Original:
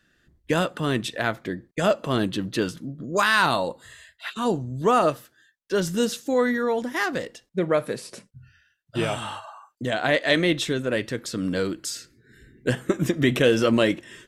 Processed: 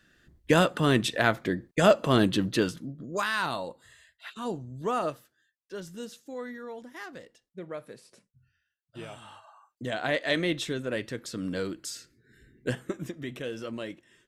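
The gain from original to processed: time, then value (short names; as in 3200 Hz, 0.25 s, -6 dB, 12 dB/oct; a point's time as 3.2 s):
2.42 s +1.5 dB
3.32 s -9.5 dB
5.07 s -9.5 dB
5.87 s -16.5 dB
9.23 s -16.5 dB
9.86 s -6.5 dB
12.7 s -6.5 dB
13.23 s -17 dB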